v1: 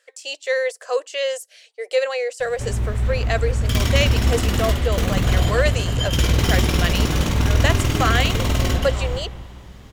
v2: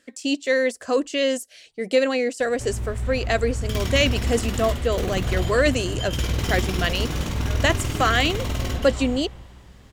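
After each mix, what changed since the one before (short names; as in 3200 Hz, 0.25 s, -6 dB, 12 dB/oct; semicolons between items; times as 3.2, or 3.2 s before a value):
speech: remove elliptic high-pass 450 Hz, stop band 50 dB; background -6.5 dB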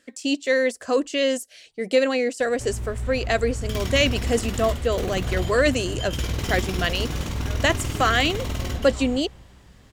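background: send -6.0 dB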